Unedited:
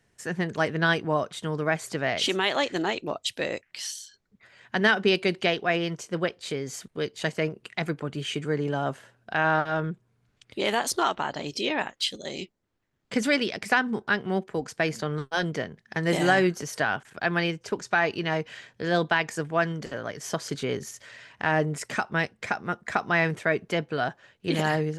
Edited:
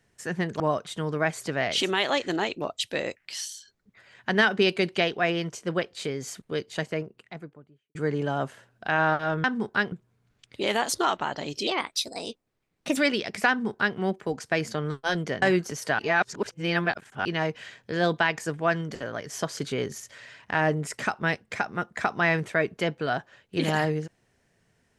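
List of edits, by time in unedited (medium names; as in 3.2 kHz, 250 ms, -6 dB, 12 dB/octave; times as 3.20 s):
0.60–1.06 s: delete
6.90–8.41 s: studio fade out
11.65–13.25 s: speed 123%
13.77–14.25 s: copy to 9.90 s
15.70–16.33 s: delete
16.90–18.16 s: reverse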